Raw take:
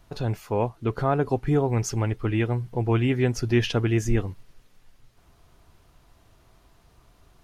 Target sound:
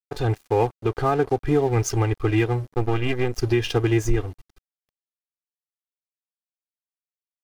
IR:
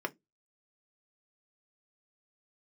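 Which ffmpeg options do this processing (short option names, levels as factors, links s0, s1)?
-filter_complex "[0:a]asplit=3[s0][s1][s2];[s0]afade=t=out:st=2.72:d=0.02[s3];[s1]aeval=exprs='if(lt(val(0),0),0.251*val(0),val(0))':c=same,afade=t=in:st=2.72:d=0.02,afade=t=out:st=3.38:d=0.02[s4];[s2]afade=t=in:st=3.38:d=0.02[s5];[s3][s4][s5]amix=inputs=3:normalize=0,aecho=1:1:2.5:0.91,aeval=exprs='sgn(val(0))*max(abs(val(0))-0.0133,0)':c=same,alimiter=limit=0.2:level=0:latency=1:release=275,volume=1.58"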